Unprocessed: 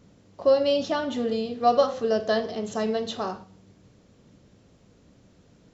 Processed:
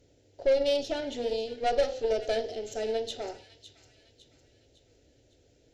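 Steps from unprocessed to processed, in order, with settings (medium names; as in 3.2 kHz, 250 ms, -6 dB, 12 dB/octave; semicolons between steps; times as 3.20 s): valve stage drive 20 dB, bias 0.8; static phaser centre 460 Hz, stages 4; feedback echo behind a high-pass 556 ms, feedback 44%, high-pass 2 kHz, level -12.5 dB; trim +2.5 dB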